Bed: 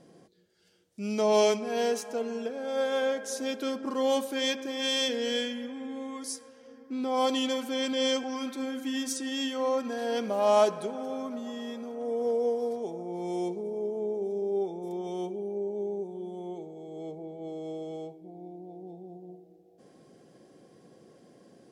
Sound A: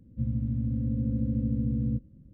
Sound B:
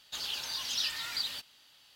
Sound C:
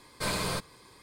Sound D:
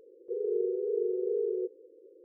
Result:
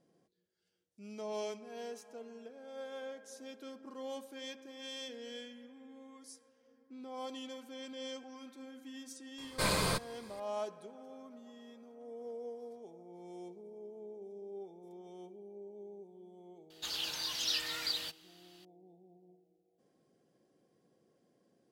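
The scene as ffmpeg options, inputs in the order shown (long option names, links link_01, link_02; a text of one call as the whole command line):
ffmpeg -i bed.wav -i cue0.wav -i cue1.wav -i cue2.wav -filter_complex "[0:a]volume=-16.5dB[link_01];[3:a]atrim=end=1.02,asetpts=PTS-STARTPTS,volume=-0.5dB,afade=type=in:duration=0.004:curve=hsin,afade=type=out:start_time=1.016:duration=0.004:curve=hsin,adelay=413658S[link_02];[2:a]atrim=end=1.95,asetpts=PTS-STARTPTS,volume=-1.5dB,afade=type=in:duration=0.004:curve=hsin,afade=type=out:start_time=1.946:duration=0.004:curve=hsin,adelay=16700[link_03];[link_01][link_02][link_03]amix=inputs=3:normalize=0" out.wav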